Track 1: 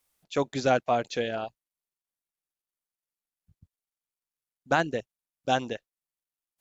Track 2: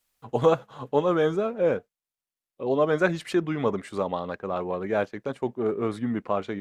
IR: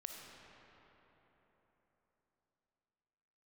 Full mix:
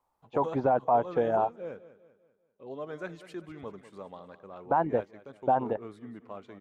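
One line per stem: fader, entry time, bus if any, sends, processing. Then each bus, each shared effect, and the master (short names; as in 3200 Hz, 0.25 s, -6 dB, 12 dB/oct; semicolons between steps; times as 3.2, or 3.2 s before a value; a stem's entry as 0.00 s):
+1.0 dB, 0.00 s, no send, no echo send, synth low-pass 930 Hz, resonance Q 4.9
-16.5 dB, 0.00 s, no send, echo send -14.5 dB, dry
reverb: off
echo: feedback echo 0.196 s, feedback 44%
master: limiter -15.5 dBFS, peak gain reduction 11 dB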